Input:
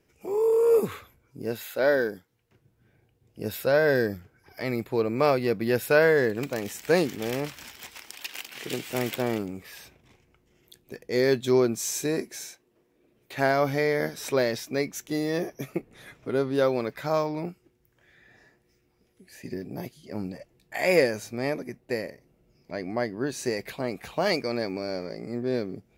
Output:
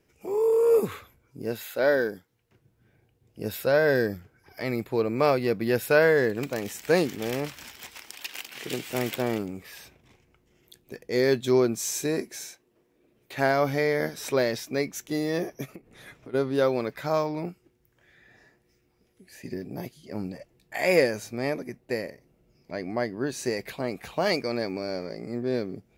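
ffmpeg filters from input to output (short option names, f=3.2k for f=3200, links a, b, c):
-filter_complex "[0:a]asplit=3[a][b][c];[a]afade=t=out:st=15.65:d=0.02[d];[b]acompressor=threshold=-39dB:ratio=10:attack=3.2:release=140:knee=1:detection=peak,afade=t=in:st=15.65:d=0.02,afade=t=out:st=16.33:d=0.02[e];[c]afade=t=in:st=16.33:d=0.02[f];[d][e][f]amix=inputs=3:normalize=0"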